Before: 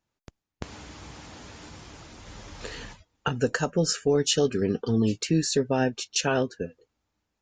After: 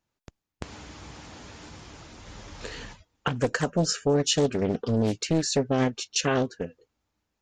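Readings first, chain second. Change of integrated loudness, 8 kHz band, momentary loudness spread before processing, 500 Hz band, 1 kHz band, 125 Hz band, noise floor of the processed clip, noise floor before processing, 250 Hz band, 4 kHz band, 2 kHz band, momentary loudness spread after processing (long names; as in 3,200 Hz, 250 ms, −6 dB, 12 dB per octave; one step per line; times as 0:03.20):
0.0 dB, 0.0 dB, 21 LU, −0.5 dB, +0.5 dB, +0.5 dB, −83 dBFS, −83 dBFS, −0.5 dB, 0.0 dB, −0.5 dB, 21 LU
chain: highs frequency-modulated by the lows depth 0.65 ms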